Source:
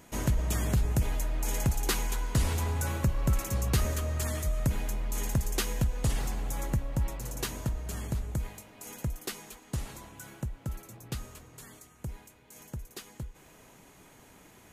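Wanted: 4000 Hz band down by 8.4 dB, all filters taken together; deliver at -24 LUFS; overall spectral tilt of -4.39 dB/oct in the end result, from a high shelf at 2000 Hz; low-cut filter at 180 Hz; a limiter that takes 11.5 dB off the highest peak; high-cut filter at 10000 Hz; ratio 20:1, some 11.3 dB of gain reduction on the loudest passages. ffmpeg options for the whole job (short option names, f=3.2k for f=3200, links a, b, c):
-af "highpass=180,lowpass=10k,highshelf=f=2k:g=-3,equalizer=f=4k:t=o:g=-8,acompressor=threshold=-40dB:ratio=20,volume=25dB,alimiter=limit=-11.5dB:level=0:latency=1"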